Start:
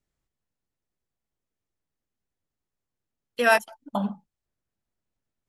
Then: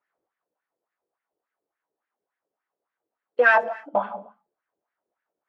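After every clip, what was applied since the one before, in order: overdrive pedal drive 18 dB, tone 1.1 kHz, clips at -7.5 dBFS; gated-style reverb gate 290 ms falling, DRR 8 dB; wah-wah 3.5 Hz 420–1800 Hz, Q 2.7; trim +7.5 dB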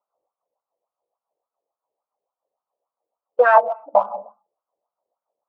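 local Wiener filter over 25 samples; high-order bell 800 Hz +15.5 dB; trim -7.5 dB

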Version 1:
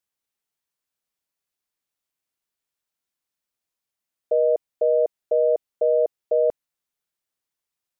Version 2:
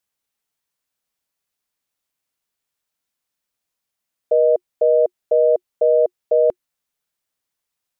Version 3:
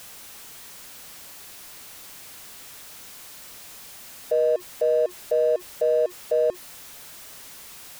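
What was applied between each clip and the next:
band-stop 360 Hz, Q 12; trim +4.5 dB
jump at every zero crossing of -30 dBFS; trim -6.5 dB

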